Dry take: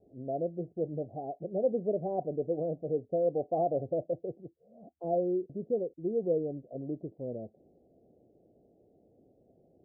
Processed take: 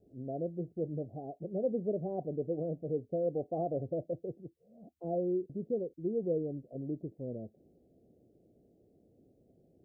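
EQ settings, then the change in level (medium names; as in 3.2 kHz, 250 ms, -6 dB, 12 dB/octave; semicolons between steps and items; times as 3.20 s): peaking EQ 830 Hz -9 dB 1.8 oct; +1.5 dB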